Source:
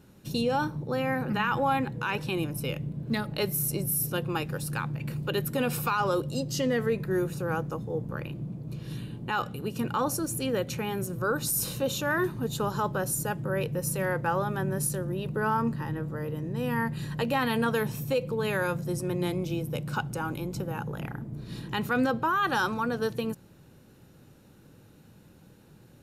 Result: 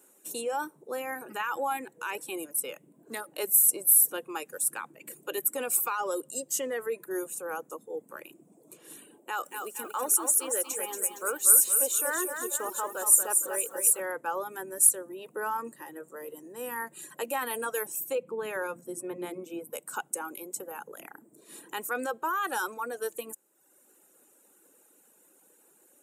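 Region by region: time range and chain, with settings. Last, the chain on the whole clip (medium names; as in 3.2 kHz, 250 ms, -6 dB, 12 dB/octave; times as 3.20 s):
9.21–14.00 s: high-pass 290 Hz 6 dB/octave + bit-crushed delay 231 ms, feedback 55%, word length 9-bit, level -4.5 dB
18.15–19.73 s: tone controls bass +11 dB, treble -12 dB + hum notches 50/100/150/200/250/300/350/400 Hz
whole clip: reverb removal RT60 0.93 s; high-pass 330 Hz 24 dB/octave; resonant high shelf 6.2 kHz +10.5 dB, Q 3; trim -3 dB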